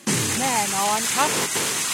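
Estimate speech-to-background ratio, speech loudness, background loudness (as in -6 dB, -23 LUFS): -4.0 dB, -25.5 LUFS, -21.5 LUFS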